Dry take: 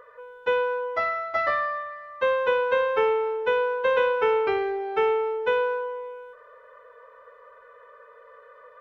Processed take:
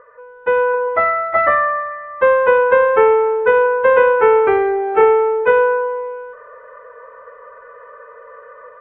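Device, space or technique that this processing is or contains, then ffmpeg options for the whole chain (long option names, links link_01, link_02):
action camera in a waterproof case: -af "lowpass=frequency=2100:width=0.5412,lowpass=frequency=2100:width=1.3066,dynaudnorm=framelen=350:gausssize=3:maxgain=7.5dB,volume=3.5dB" -ar 44100 -c:a aac -b:a 48k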